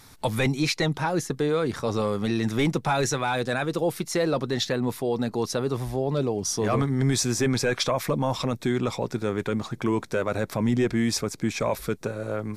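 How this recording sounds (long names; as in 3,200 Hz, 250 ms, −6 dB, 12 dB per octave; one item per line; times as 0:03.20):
background noise floor −46 dBFS
spectral slope −5.0 dB per octave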